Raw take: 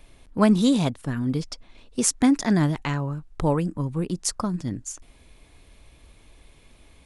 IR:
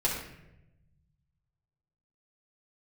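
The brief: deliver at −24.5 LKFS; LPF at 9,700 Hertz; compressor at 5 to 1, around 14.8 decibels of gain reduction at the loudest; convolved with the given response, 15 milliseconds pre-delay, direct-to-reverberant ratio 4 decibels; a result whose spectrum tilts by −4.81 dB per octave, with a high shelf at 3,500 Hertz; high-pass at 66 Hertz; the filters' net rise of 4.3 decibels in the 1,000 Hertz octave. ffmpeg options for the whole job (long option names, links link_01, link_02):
-filter_complex "[0:a]highpass=66,lowpass=9700,equalizer=frequency=1000:width_type=o:gain=4.5,highshelf=frequency=3500:gain=8,acompressor=threshold=-30dB:ratio=5,asplit=2[link_01][link_02];[1:a]atrim=start_sample=2205,adelay=15[link_03];[link_02][link_03]afir=irnorm=-1:irlink=0,volume=-12.5dB[link_04];[link_01][link_04]amix=inputs=2:normalize=0,volume=7.5dB"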